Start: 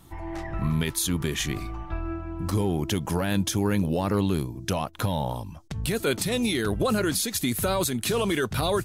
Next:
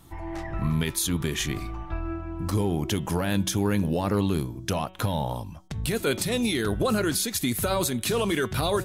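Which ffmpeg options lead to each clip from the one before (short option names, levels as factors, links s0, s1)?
-af "bandreject=f=186.4:t=h:w=4,bandreject=f=372.8:t=h:w=4,bandreject=f=559.2:t=h:w=4,bandreject=f=745.6:t=h:w=4,bandreject=f=932:t=h:w=4,bandreject=f=1118.4:t=h:w=4,bandreject=f=1304.8:t=h:w=4,bandreject=f=1491.2:t=h:w=4,bandreject=f=1677.6:t=h:w=4,bandreject=f=1864:t=h:w=4,bandreject=f=2050.4:t=h:w=4,bandreject=f=2236.8:t=h:w=4,bandreject=f=2423.2:t=h:w=4,bandreject=f=2609.6:t=h:w=4,bandreject=f=2796:t=h:w=4,bandreject=f=2982.4:t=h:w=4,bandreject=f=3168.8:t=h:w=4,bandreject=f=3355.2:t=h:w=4,bandreject=f=3541.6:t=h:w=4,bandreject=f=3728:t=h:w=4,bandreject=f=3914.4:t=h:w=4"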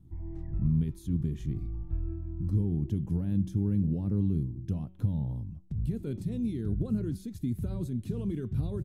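-af "firequalizer=gain_entry='entry(150,0);entry(590,-23);entry(1200,-29)':delay=0.05:min_phase=1"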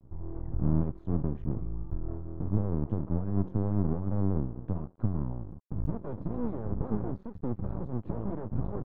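-af "aeval=exprs='max(val(0),0)':c=same,lowpass=f=1100:t=q:w=1.8,volume=1.41"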